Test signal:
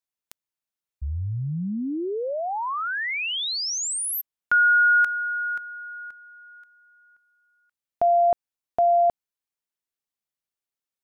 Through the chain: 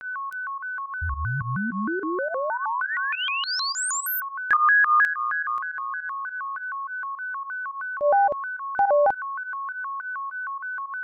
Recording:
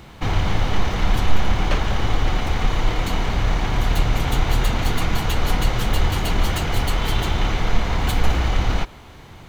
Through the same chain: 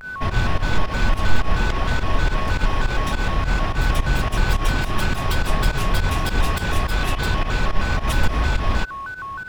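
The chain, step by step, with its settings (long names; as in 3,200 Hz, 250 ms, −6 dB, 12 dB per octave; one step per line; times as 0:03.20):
steady tone 1,300 Hz −28 dBFS
fake sidechain pumping 105 BPM, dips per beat 2, −14 dB, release 99 ms
pitch modulation by a square or saw wave square 3.2 Hz, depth 250 cents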